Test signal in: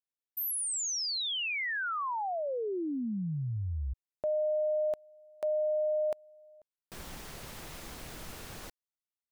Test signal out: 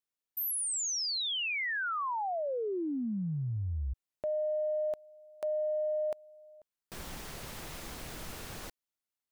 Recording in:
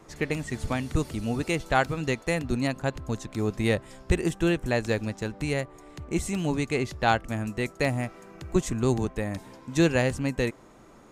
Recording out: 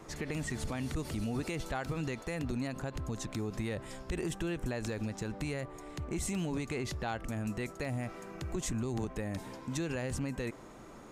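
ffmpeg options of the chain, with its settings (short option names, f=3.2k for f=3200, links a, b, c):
-af "acompressor=threshold=-30dB:ratio=12:attack=0.45:release=45:knee=6:detection=rms,volume=1.5dB"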